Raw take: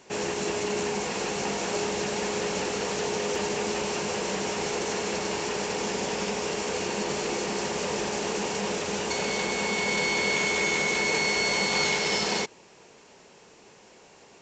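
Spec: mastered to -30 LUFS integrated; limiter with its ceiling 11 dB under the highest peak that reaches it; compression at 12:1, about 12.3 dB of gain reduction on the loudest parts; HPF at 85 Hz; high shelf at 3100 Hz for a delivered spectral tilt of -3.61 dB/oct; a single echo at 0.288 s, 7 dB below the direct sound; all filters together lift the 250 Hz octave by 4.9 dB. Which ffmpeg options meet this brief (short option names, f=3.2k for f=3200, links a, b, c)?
-af "highpass=85,equalizer=f=250:t=o:g=7,highshelf=f=3.1k:g=-4,acompressor=threshold=-35dB:ratio=12,alimiter=level_in=12dB:limit=-24dB:level=0:latency=1,volume=-12dB,aecho=1:1:288:0.447,volume=14dB"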